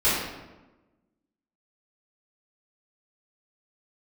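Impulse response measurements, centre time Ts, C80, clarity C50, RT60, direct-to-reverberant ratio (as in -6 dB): 73 ms, 3.0 dB, 0.0 dB, 1.1 s, -14.5 dB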